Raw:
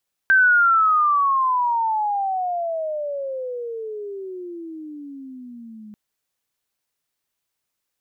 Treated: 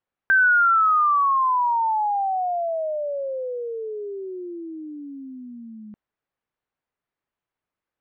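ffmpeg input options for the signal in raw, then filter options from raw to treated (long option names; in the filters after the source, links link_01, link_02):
-f lavfi -i "aevalsrc='pow(10,(-11-26*t/5.64)/20)*sin(2*PI*1570*5.64/(-35*log(2)/12)*(exp(-35*log(2)/12*t/5.64)-1))':duration=5.64:sample_rate=44100"
-af "lowpass=1800"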